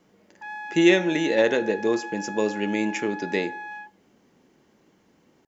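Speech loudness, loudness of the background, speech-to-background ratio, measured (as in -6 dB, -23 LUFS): -23.5 LUFS, -36.0 LUFS, 12.5 dB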